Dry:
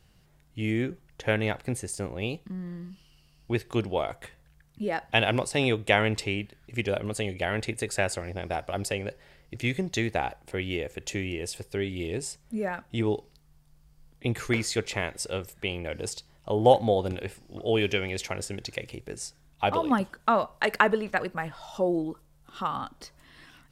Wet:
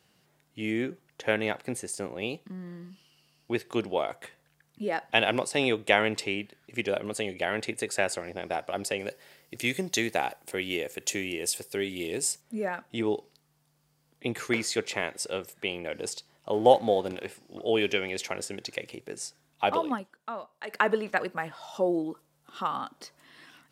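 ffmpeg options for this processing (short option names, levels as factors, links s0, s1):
-filter_complex "[0:a]asettb=1/sr,asplit=3[s0][s1][s2];[s0]atrim=end=8.994[s3];[s1]atrim=start=8.99:end=12.41,asetpts=PTS-STARTPTS,afade=t=in:d=0.004:c=qsin,afade=t=out:st=3.416:d=0.004:c=qsin,aemphasis=mode=production:type=50kf[s4];[s2]atrim=start=12.406[s5];[s3][s4]acrossfade=d=0.004:c1=hsin:c2=qsin[s6];[s6][s5]acrossfade=d=0.004:c1=qsin:c2=hsin,asettb=1/sr,asplit=3[s7][s8][s9];[s7]atrim=end=16.534[s10];[s8]atrim=start=16.53:end=17.28,asetpts=PTS-STARTPTS,afade=t=in:d=0.004:c=qsin,afade=t=out:st=0.746:d=0.004:c=qsin,aeval=exprs='sgn(val(0))*max(abs(val(0))-0.00335,0)':c=same[s11];[s9]atrim=start=17.276[s12];[s10][s11]acrossfade=d=0.004:c1=hsin:c2=qsin[s13];[s13][s12]acrossfade=d=0.004:c1=qsin:c2=hsin,asplit=3[s14][s15][s16];[s14]atrim=end=20.04,asetpts=PTS-STARTPTS,afade=t=out:st=19.77:d=0.27:silence=0.211349[s17];[s15]atrim=start=20.04:end=20.66,asetpts=PTS-STARTPTS,volume=0.211[s18];[s16]atrim=start=20.66,asetpts=PTS-STARTPTS,afade=t=in:d=0.27:silence=0.211349[s19];[s17][s18][s19]concat=n=3:v=0:a=1,highpass=210"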